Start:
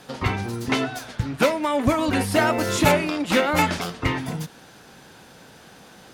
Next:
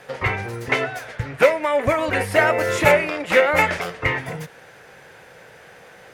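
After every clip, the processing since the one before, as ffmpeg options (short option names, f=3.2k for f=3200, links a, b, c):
-af "equalizer=f=125:t=o:w=1:g=4,equalizer=f=250:t=o:w=1:g=-9,equalizer=f=500:t=o:w=1:g=11,equalizer=f=2k:t=o:w=1:g=12,equalizer=f=4k:t=o:w=1:g=-4,volume=-3.5dB"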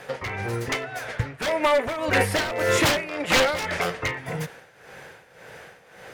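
-af "aeval=exprs='0.178*(abs(mod(val(0)/0.178+3,4)-2)-1)':c=same,tremolo=f=1.8:d=0.75,volume=3dB"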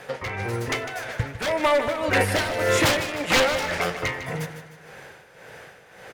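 -af "aecho=1:1:153|306|459|612|765:0.282|0.127|0.0571|0.0257|0.0116"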